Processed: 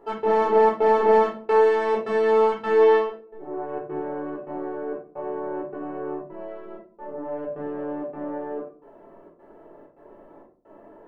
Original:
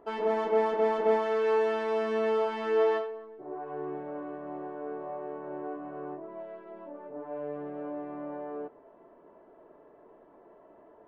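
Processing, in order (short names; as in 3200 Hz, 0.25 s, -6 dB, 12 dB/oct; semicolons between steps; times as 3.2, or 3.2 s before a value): step gate "x.xxxx.xxxx..xxx" 131 bpm -60 dB; shoebox room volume 330 m³, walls furnished, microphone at 4.2 m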